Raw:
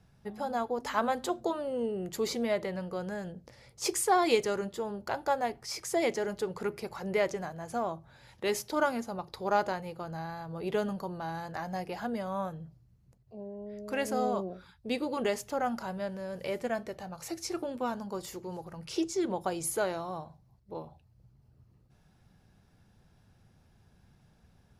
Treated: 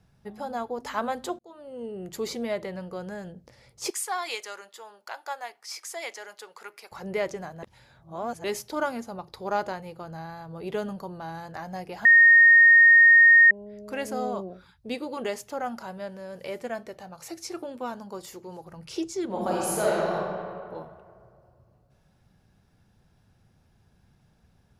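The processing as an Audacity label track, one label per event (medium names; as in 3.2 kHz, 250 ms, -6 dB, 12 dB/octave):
1.390000	2.120000	fade in
3.900000	6.920000	high-pass 1 kHz
7.630000	8.440000	reverse
12.050000	13.510000	bleep 1.85 kHz -11 dBFS
14.940000	18.670000	bass shelf 130 Hz -8.5 dB
19.260000	20.150000	reverb throw, RT60 2.3 s, DRR -6 dB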